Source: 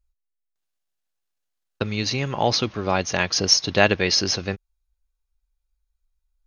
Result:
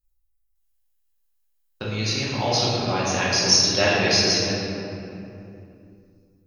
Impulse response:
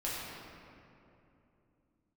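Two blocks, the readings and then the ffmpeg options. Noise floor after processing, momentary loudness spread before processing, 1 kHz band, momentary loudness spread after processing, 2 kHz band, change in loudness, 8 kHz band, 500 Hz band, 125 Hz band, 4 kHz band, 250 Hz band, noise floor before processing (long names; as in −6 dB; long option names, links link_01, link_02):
−68 dBFS, 11 LU, 0.0 dB, 19 LU, 0.0 dB, +1.0 dB, +2.5 dB, 0.0 dB, +1.0 dB, +2.0 dB, +0.5 dB, −79 dBFS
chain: -filter_complex "[0:a]aemphasis=mode=production:type=50fm[link_01];[1:a]atrim=start_sample=2205[link_02];[link_01][link_02]afir=irnorm=-1:irlink=0,volume=-5.5dB"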